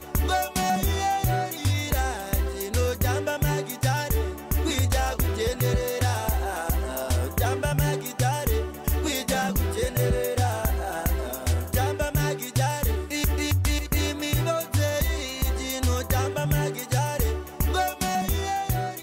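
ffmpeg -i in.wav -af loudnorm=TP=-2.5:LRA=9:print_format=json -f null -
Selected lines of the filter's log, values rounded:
"input_i" : "-26.0",
"input_tp" : "-12.4",
"input_lra" : "0.7",
"input_thresh" : "-36.0",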